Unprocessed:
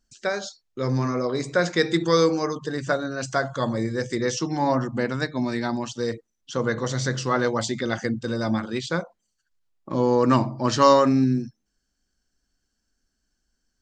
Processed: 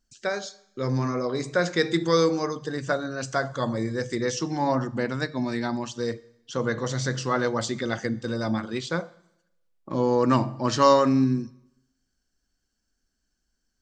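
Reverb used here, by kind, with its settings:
four-comb reverb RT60 0.85 s, combs from 30 ms, DRR 19.5 dB
level −2 dB

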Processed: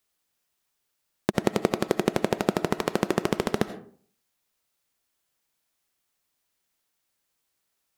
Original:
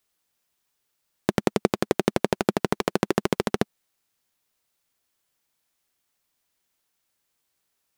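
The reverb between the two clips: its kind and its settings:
comb and all-pass reverb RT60 0.5 s, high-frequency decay 0.5×, pre-delay 45 ms, DRR 10.5 dB
level −1.5 dB

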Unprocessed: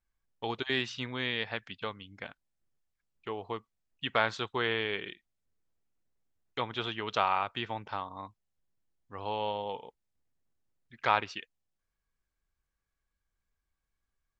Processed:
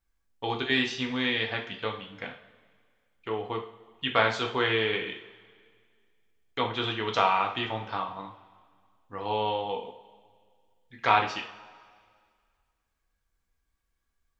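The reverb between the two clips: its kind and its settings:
coupled-rooms reverb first 0.44 s, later 2 s, from −18 dB, DRR 1 dB
level +2.5 dB

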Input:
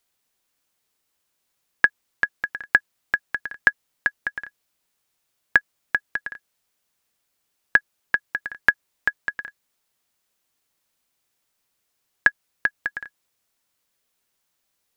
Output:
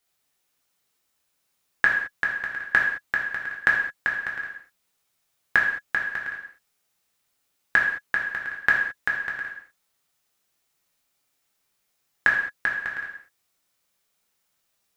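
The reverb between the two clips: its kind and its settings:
reverb whose tail is shaped and stops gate 240 ms falling, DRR −3 dB
level −3.5 dB

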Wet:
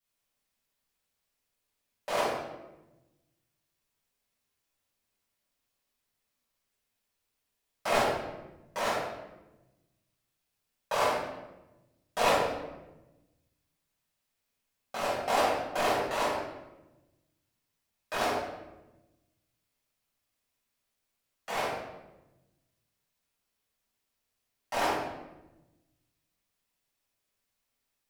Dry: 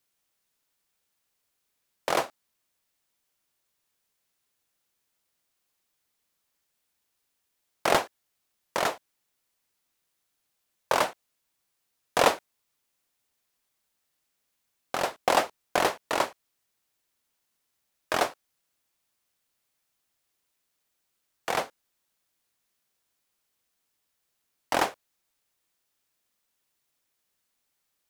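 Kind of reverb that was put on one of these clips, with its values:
rectangular room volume 460 cubic metres, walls mixed, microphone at 6.6 metres
level −16 dB

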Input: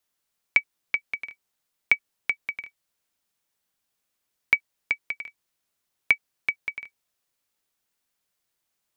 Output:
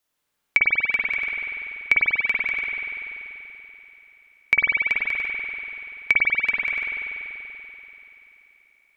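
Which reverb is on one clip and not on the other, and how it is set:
spring reverb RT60 3.5 s, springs 48 ms, chirp 50 ms, DRR −5.5 dB
level +1 dB

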